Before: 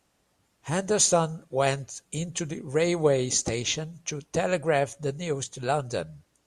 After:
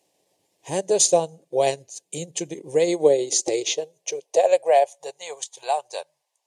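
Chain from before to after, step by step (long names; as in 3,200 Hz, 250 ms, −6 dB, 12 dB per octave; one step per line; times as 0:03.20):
transient designer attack 0 dB, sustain −8 dB
high-pass filter sweep 230 Hz → 920 Hz, 0:02.83–0:05.28
phaser with its sweep stopped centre 560 Hz, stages 4
level +4 dB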